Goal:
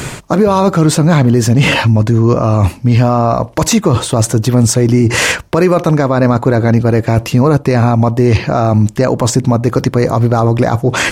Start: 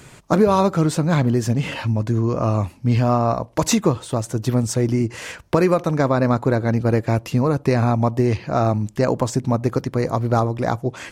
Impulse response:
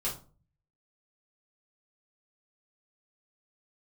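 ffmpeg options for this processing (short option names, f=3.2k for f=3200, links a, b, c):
-af "areverse,acompressor=threshold=-26dB:ratio=10,areverse,alimiter=level_in=23dB:limit=-1dB:release=50:level=0:latency=1,volume=-1dB"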